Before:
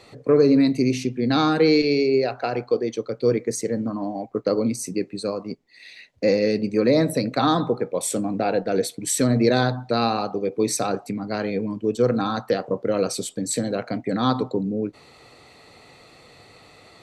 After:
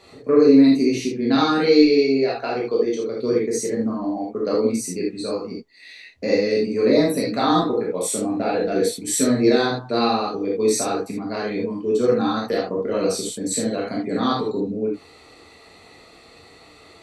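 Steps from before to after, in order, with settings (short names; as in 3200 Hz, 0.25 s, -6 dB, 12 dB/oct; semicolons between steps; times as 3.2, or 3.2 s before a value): non-linear reverb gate 0.1 s flat, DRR -4 dB; gain -4 dB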